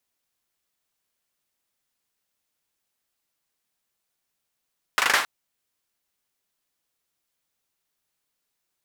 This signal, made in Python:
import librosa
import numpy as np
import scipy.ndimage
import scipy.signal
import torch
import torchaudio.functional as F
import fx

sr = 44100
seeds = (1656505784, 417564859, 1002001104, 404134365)

y = fx.drum_clap(sr, seeds[0], length_s=0.27, bursts=5, spacing_ms=39, hz=1400.0, decay_s=0.41)